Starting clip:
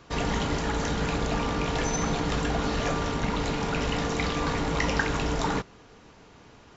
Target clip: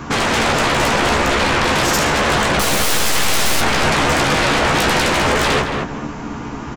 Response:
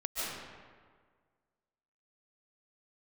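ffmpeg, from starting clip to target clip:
-filter_complex "[0:a]equalizer=f=250:t=o:w=1:g=8,equalizer=f=500:t=o:w=1:g=-7,equalizer=f=1k:t=o:w=1:g=4,equalizer=f=4k:t=o:w=1:g=-8,alimiter=limit=-18dB:level=0:latency=1:release=34,asettb=1/sr,asplit=3[a][b][c];[a]atrim=end=2.594[d];[b]atrim=start=2.59:end=3.61,asetpts=PTS-STARTPTS,afade=t=in:d=0.004:c=qsin,afade=t=out:st=1.016:d=0.004:c=qsin,aeval=exprs='0.126*(cos(1*acos(clip(val(0)/0.126,-1,1)))-cos(1*PI/2))+0.0501*(cos(8*acos(clip(val(0)/0.126,-1,1)))-cos(8*PI/2))':c=same[e];[c]atrim=start=3.606[f];[d][e]acrossfade=d=0.004:c1=hsin:c2=qsin[g];[g][f]acrossfade=d=0.004:c1=qsin:c2=hsin,aeval=exprs='0.15*sin(PI/2*5.62*val(0)/0.15)':c=same,asplit=2[h][i];[i]adelay=14,volume=-5.5dB[j];[h][j]amix=inputs=2:normalize=0,asplit=2[k][l];[l]adelay=219,lowpass=f=1.7k:p=1,volume=-3dB,asplit=2[m][n];[n]adelay=219,lowpass=f=1.7k:p=1,volume=0.32,asplit=2[o][p];[p]adelay=219,lowpass=f=1.7k:p=1,volume=0.32,asplit=2[q][r];[r]adelay=219,lowpass=f=1.7k:p=1,volume=0.32[s];[m][o][q][s]amix=inputs=4:normalize=0[t];[k][t]amix=inputs=2:normalize=0,volume=1.5dB"

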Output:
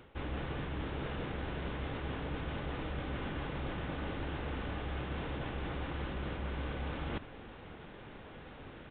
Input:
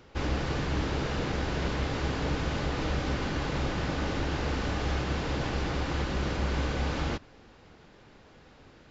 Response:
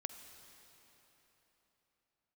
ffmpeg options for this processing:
-af "areverse,acompressor=threshold=-42dB:ratio=5,areverse,aresample=8000,aresample=44100,volume=5dB"

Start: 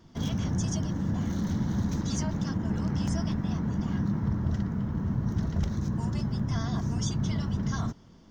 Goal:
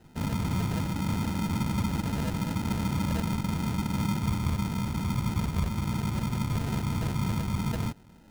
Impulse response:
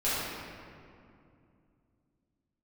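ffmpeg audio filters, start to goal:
-af "acrusher=samples=39:mix=1:aa=0.000001"

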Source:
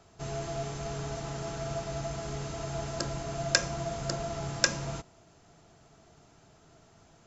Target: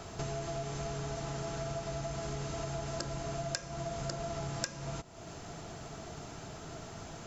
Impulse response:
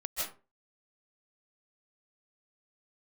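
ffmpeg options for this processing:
-af "acompressor=threshold=-50dB:ratio=6,volume=13.5dB"

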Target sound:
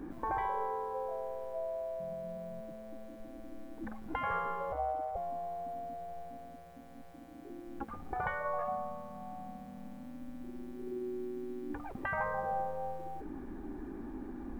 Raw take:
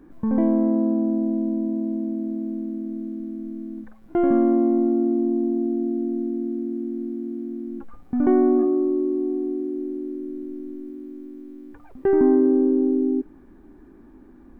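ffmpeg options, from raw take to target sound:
-filter_complex "[0:a]asettb=1/sr,asplit=3[a][b][c];[a]atrim=end=4.724[d];[b]atrim=start=4.72:end=5.16,asetpts=PTS-STARTPTS,afade=t=in:d=0.004:c=qsin,afade=t=out:st=0.436:d=0.004:c=qsin,aeval=exprs='val(0)*sin(2*PI*68*n/s)':c=same[e];[c]atrim=start=5.156[f];[d][e]acrossfade=d=0.004:c1=hsin:c2=qsin[g];[g][f]acrossfade=d=0.004:c1=qsin:c2=hsin,afftfilt=real='re*lt(hypot(re,im),0.1)':imag='im*lt(hypot(re,im),0.1)':win_size=1024:overlap=0.75,equalizer=f=800:w=7.8:g=6.5,volume=5dB"

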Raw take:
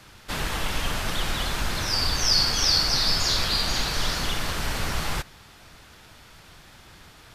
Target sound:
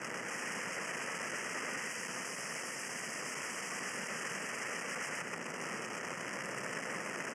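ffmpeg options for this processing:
-filter_complex "[0:a]acrossover=split=4900[a][b];[b]acompressor=threshold=-32dB:ratio=4:attack=1:release=60[c];[a][c]amix=inputs=2:normalize=0,tiltshelf=f=690:g=9.5,acompressor=threshold=-23dB:ratio=12,alimiter=level_in=0.5dB:limit=-24dB:level=0:latency=1:release=180,volume=-0.5dB,volume=28dB,asoftclip=hard,volume=-28dB,acrusher=bits=9:dc=4:mix=0:aa=0.000001,aeval=exprs='(mod(158*val(0)+1,2)-1)/158':c=same,asuperstop=centerf=3900:order=8:qfactor=2,highpass=f=170:w=0.5412,highpass=f=170:w=1.3066,equalizer=f=310:t=q:w=4:g=-4,equalizer=f=500:t=q:w=4:g=3,equalizer=f=780:t=q:w=4:g=-3,equalizer=f=1.3k:t=q:w=4:g=3,equalizer=f=1.9k:t=q:w=4:g=9,lowpass=f=9.1k:w=0.5412,lowpass=f=9.1k:w=1.3066,asplit=2[d][e];[e]aecho=0:1:127:0.668[f];[d][f]amix=inputs=2:normalize=0,volume=8dB"

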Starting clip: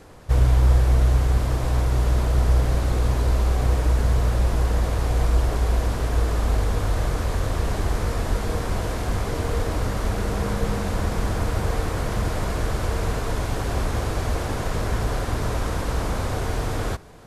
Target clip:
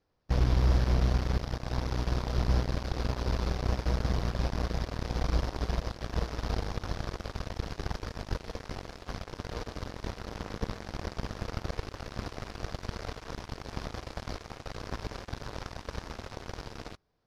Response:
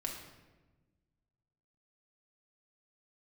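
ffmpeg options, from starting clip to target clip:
-af "highshelf=f=6.5k:t=q:w=3:g=-8,aeval=exprs='0.447*(cos(1*acos(clip(val(0)/0.447,-1,1)))-cos(1*PI/2))+0.0282*(cos(3*acos(clip(val(0)/0.447,-1,1)))-cos(3*PI/2))+0.0562*(cos(7*acos(clip(val(0)/0.447,-1,1)))-cos(7*PI/2))':c=same,volume=-7.5dB"

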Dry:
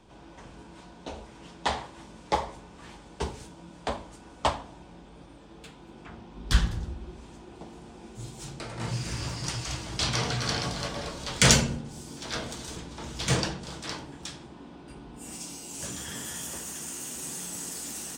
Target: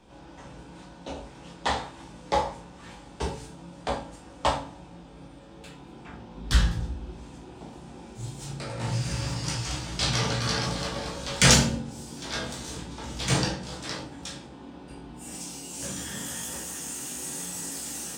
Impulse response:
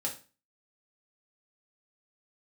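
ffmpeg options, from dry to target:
-filter_complex "[0:a]asplit=2[a][b];[1:a]atrim=start_sample=2205,adelay=16[c];[b][c]afir=irnorm=-1:irlink=0,volume=-3dB[d];[a][d]amix=inputs=2:normalize=0,volume=-1dB"

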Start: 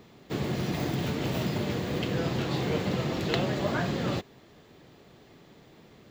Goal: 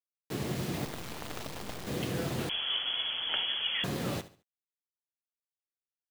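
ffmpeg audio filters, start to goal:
-filter_complex "[0:a]flanger=delay=9.3:depth=9.5:regen=-81:speed=1.2:shape=triangular,asettb=1/sr,asplit=3[a][b][c];[a]atrim=end=0.854[d];[b]atrim=start=0.85:end=1.87,asetpts=PTS-STARTPTS,afade=t=in:d=0.004:c=qsin,afade=t=out:st=1.016:d=0.004:c=qsin,aeval=exprs='0.0794*(cos(1*acos(clip(val(0)/0.0794,-1,1)))-cos(1*PI/2))+0.0398*(cos(3*acos(clip(val(0)/0.0794,-1,1)))-cos(3*PI/2))+0.00251*(cos(7*acos(clip(val(0)/0.0794,-1,1)))-cos(7*PI/2))+0.00282*(cos(8*acos(clip(val(0)/0.0794,-1,1)))-cos(8*PI/2))':c=same[e];[c]atrim=start=1.866[f];[d][e]acrossfade=d=0.004:c1=hsin:c2=qsin[g];[g][f]acrossfade=d=0.004:c1=qsin:c2=hsin,acrusher=bits=6:mix=0:aa=0.000001,aecho=1:1:71|142|213:0.168|0.052|0.0161,asettb=1/sr,asplit=3[h][i][j];[h]atrim=end=2.494[k];[i]atrim=start=2.49:end=3.84,asetpts=PTS-STARTPTS,afade=t=in:d=0.004:c=qsin,afade=t=out:st=1.346:d=0.004:c=qsin,lowpass=f=3k:t=q:w=0.5098,lowpass=f=3k:t=q:w=0.6013,lowpass=f=3k:t=q:w=0.9,lowpass=f=3k:t=q:w=2.563,afreqshift=-3500[l];[j]atrim=start=3.836[m];[k][l]acrossfade=d=0.004:c1=hsin:c2=qsin[n];[n][m]acrossfade=d=0.004:c1=qsin:c2=hsin"

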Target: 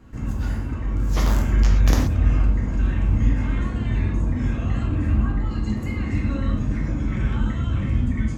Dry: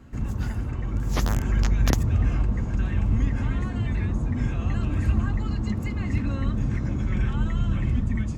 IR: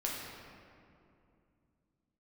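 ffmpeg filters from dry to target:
-filter_complex "[0:a]asettb=1/sr,asplit=3[a][b][c];[a]atrim=end=4.834[d];[b]atrim=start=4.83:end=5.5,asetpts=PTS-STARTPTS,afade=t=in:d=0.004:c=qsin,afade=t=out:st=0.666:d=0.004:c=qsin,highshelf=f=3.5k:g=-9[e];[c]atrim=start=5.496[f];[d][e]acrossfade=d=0.004:c1=hsin:c2=qsin[g];[g][f]acrossfade=d=0.004:c1=qsin:c2=hsin[h];[1:a]atrim=start_sample=2205,atrim=end_sample=6174[i];[h][i]afir=irnorm=-1:irlink=0"

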